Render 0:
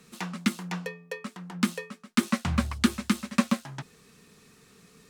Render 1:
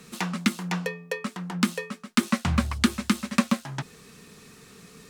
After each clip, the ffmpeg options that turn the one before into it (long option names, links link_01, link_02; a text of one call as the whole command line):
ffmpeg -i in.wav -af "acompressor=threshold=-34dB:ratio=1.5,volume=7dB" out.wav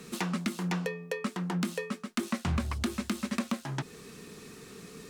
ffmpeg -i in.wav -af "asoftclip=type=tanh:threshold=-15.5dB,equalizer=frequency=350:width=1.5:gain=6.5,alimiter=limit=-21.5dB:level=0:latency=1:release=178" out.wav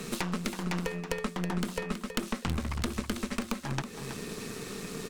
ffmpeg -i in.wav -af "acompressor=threshold=-42dB:ratio=3,aecho=1:1:324|648|972:0.376|0.0977|0.0254,aeval=exprs='0.0841*(cos(1*acos(clip(val(0)/0.0841,-1,1)))-cos(1*PI/2))+0.0299*(cos(4*acos(clip(val(0)/0.0841,-1,1)))-cos(4*PI/2))':channel_layout=same,volume=8dB" out.wav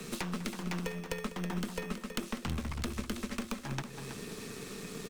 ffmpeg -i in.wav -filter_complex "[0:a]acrossover=split=220|730|4300[link_01][link_02][link_03][link_04];[link_02]acrusher=samples=15:mix=1:aa=0.000001[link_05];[link_01][link_05][link_03][link_04]amix=inputs=4:normalize=0,asplit=2[link_06][link_07];[link_07]adelay=198.3,volume=-14dB,highshelf=frequency=4000:gain=-4.46[link_08];[link_06][link_08]amix=inputs=2:normalize=0,volume=-4dB" out.wav